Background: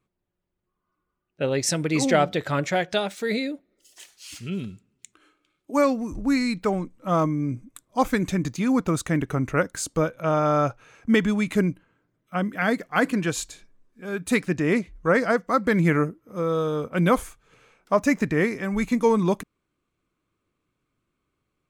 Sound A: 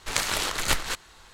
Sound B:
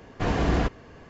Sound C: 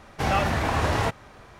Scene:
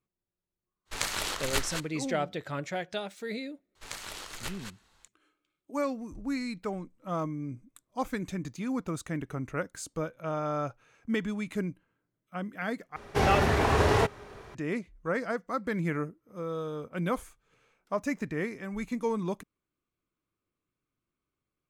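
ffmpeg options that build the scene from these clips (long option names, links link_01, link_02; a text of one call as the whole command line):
ffmpeg -i bed.wav -i cue0.wav -i cue1.wav -i cue2.wav -filter_complex "[1:a]asplit=2[link_01][link_02];[0:a]volume=-10.5dB[link_03];[link_01]agate=range=-33dB:threshold=-45dB:ratio=3:release=100:detection=peak[link_04];[3:a]equalizer=frequency=410:width=6.5:gain=13[link_05];[link_03]asplit=2[link_06][link_07];[link_06]atrim=end=12.964[link_08];[link_05]atrim=end=1.59,asetpts=PTS-STARTPTS,volume=-1dB[link_09];[link_07]atrim=start=14.546[link_10];[link_04]atrim=end=1.33,asetpts=PTS-STARTPTS,volume=-5.5dB,afade=type=in:duration=0.004:curve=hsin,afade=type=out:start_time=1.326:duration=0.004:curve=hsin,adelay=850[link_11];[link_02]atrim=end=1.33,asetpts=PTS-STARTPTS,volume=-14.5dB,afade=type=in:duration=0.004:curve=hsin,afade=type=out:start_time=1.326:duration=0.004:curve=hsin,adelay=3750[link_12];[link_08][link_09]acrossfade=duration=0.004:curve1=hsin:curve2=hsin[link_13];[link_13][link_10]acrossfade=duration=0.004:curve1=hsin:curve2=hsin[link_14];[link_14][link_11][link_12]amix=inputs=3:normalize=0" out.wav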